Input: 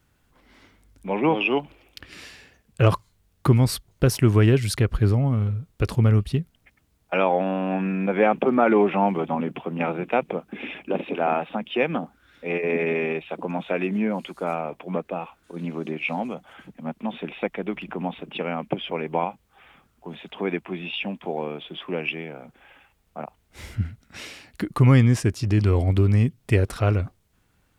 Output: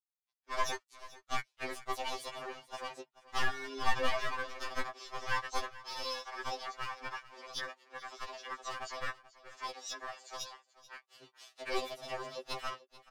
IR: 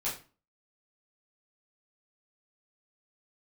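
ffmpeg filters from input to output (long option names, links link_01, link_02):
-filter_complex "[0:a]aecho=1:1:3.7:0.71,aeval=exprs='sgn(val(0))*max(abs(val(0))-0.0075,0)':channel_layout=same,highpass=470,lowpass=2900,aeval=exprs='clip(val(0),-1,0.0531)':channel_layout=same,asetrate=93492,aresample=44100,flanger=delay=3.6:depth=3.7:regen=44:speed=0.32:shape=sinusoidal,asplit=4[link_01][link_02][link_03][link_04];[link_02]asetrate=22050,aresample=44100,atempo=2,volume=-17dB[link_05];[link_03]asetrate=29433,aresample=44100,atempo=1.49831,volume=-4dB[link_06];[link_04]asetrate=52444,aresample=44100,atempo=0.840896,volume=-15dB[link_07];[link_01][link_05][link_06][link_07]amix=inputs=4:normalize=0,asplit=2[link_08][link_09];[link_09]aecho=0:1:435:0.126[link_10];[link_08][link_10]amix=inputs=2:normalize=0,afftfilt=real='re*2.45*eq(mod(b,6),0)':imag='im*2.45*eq(mod(b,6),0)':win_size=2048:overlap=0.75,volume=-5dB"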